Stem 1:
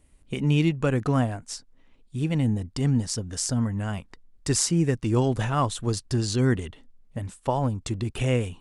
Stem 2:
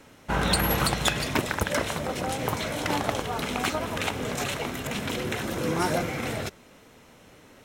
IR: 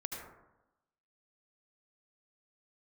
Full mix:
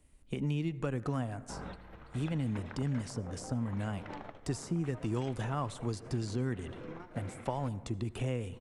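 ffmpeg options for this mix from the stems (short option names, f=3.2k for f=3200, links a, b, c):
-filter_complex "[0:a]volume=-5dB,asplit=3[a][b][c];[b]volume=-17.5dB[d];[1:a]lowpass=2.4k,adelay=1200,volume=-18dB,asplit=2[e][f];[f]volume=-13.5dB[g];[c]apad=whole_len=389986[h];[e][h]sidechaingate=range=-33dB:threshold=-55dB:ratio=16:detection=peak[i];[2:a]atrim=start_sample=2205[j];[d][g]amix=inputs=2:normalize=0[k];[k][j]afir=irnorm=-1:irlink=0[l];[a][i][l]amix=inputs=3:normalize=0,acrossover=split=100|1400[m][n][o];[m]acompressor=threshold=-46dB:ratio=4[p];[n]acompressor=threshold=-32dB:ratio=4[q];[o]acompressor=threshold=-49dB:ratio=4[r];[p][q][r]amix=inputs=3:normalize=0"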